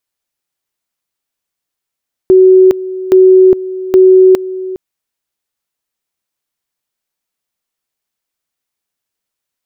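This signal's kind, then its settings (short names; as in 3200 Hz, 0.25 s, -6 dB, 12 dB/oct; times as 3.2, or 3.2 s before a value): two-level tone 374 Hz -1.5 dBFS, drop 16 dB, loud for 0.41 s, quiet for 0.41 s, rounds 3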